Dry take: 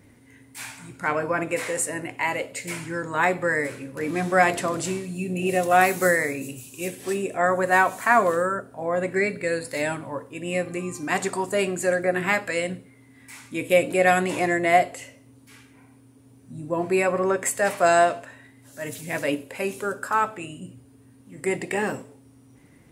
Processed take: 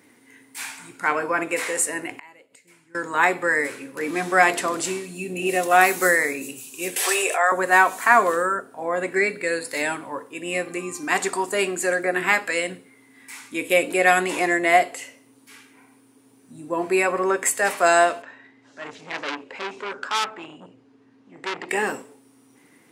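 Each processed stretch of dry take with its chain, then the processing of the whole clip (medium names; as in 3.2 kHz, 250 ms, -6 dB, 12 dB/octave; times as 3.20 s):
2.11–2.95 s: bass shelf 280 Hz +8.5 dB + inverted gate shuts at -27 dBFS, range -26 dB
6.96–7.52 s: high-pass 560 Hz 24 dB/octave + level flattener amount 70%
18.22–21.69 s: low-pass 6.1 kHz 24 dB/octave + treble shelf 3.2 kHz -8 dB + transformer saturation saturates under 3.8 kHz
whole clip: high-pass 330 Hz 12 dB/octave; peaking EQ 590 Hz -7 dB 0.43 oct; trim +4 dB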